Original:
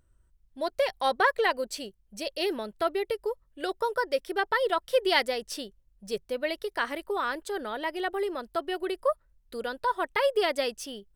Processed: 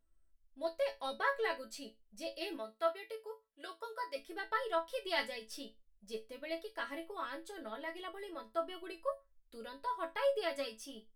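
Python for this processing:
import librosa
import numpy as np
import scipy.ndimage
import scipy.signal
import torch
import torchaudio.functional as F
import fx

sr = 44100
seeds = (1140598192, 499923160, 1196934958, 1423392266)

y = fx.highpass(x, sr, hz=620.0, slope=6, at=(2.56, 4.16))
y = fx.resonator_bank(y, sr, root=57, chord='major', decay_s=0.21)
y = y * 10.0 ** (4.5 / 20.0)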